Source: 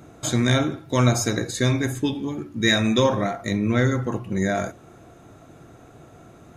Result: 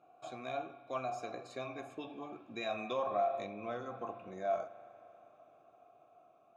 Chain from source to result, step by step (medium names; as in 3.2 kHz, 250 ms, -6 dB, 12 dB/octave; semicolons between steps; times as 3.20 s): Doppler pass-by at 3.01 s, 10 m/s, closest 10 m; wow and flutter 21 cents; spring tank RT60 3.1 s, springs 39 ms, chirp 70 ms, DRR 16.5 dB; compression 3:1, threshold -25 dBFS, peak gain reduction 8.5 dB; vowel filter a; trim +4.5 dB